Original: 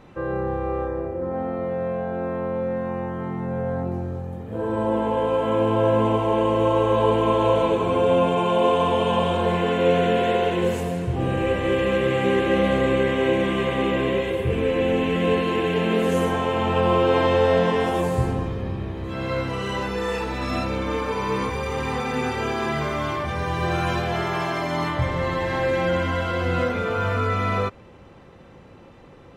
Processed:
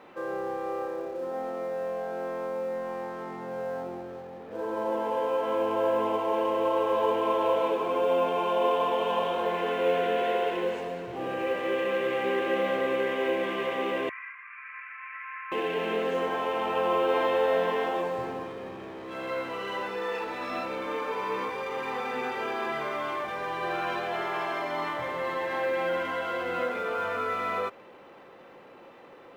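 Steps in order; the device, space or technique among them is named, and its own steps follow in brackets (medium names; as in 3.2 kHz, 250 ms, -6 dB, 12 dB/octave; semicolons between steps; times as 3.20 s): phone line with mismatched companding (band-pass 390–3300 Hz; companding laws mixed up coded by mu); 14.09–15.52 s: Chebyshev band-pass 1.1–2.4 kHz, order 4; trim -5 dB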